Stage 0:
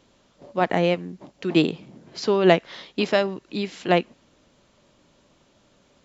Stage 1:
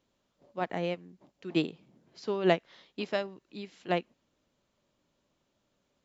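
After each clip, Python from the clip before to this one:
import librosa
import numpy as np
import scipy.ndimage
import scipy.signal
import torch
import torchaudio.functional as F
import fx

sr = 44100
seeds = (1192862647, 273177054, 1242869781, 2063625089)

y = fx.upward_expand(x, sr, threshold_db=-29.0, expansion=1.5)
y = y * 10.0 ** (-8.0 / 20.0)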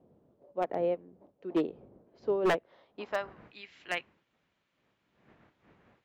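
y = fx.dmg_wind(x, sr, seeds[0], corner_hz=180.0, level_db=-46.0)
y = fx.filter_sweep_bandpass(y, sr, from_hz=510.0, to_hz=2100.0, start_s=2.68, end_s=3.52, q=1.5)
y = 10.0 ** (-25.0 / 20.0) * (np.abs((y / 10.0 ** (-25.0 / 20.0) + 3.0) % 4.0 - 2.0) - 1.0)
y = y * 10.0 ** (5.0 / 20.0)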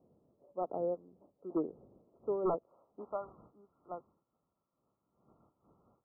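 y = fx.brickwall_lowpass(x, sr, high_hz=1400.0)
y = y * 10.0 ** (-5.0 / 20.0)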